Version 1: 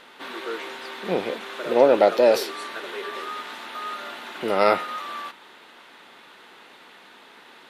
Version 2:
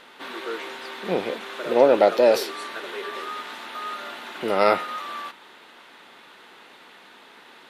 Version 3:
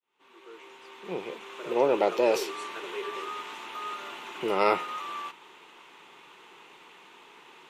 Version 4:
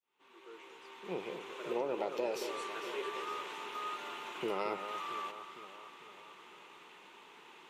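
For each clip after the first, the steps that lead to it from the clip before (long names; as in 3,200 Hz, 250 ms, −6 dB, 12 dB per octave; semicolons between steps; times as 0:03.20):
no processing that can be heard
fade in at the beginning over 2.46 s; EQ curve with evenly spaced ripples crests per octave 0.72, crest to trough 8 dB; level −4.5 dB
downward compressor 10 to 1, threshold −27 dBFS, peak gain reduction 10.5 dB; on a send: delay that swaps between a low-pass and a high-pass 226 ms, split 1,400 Hz, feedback 73%, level −9 dB; on the sum: level −4.5 dB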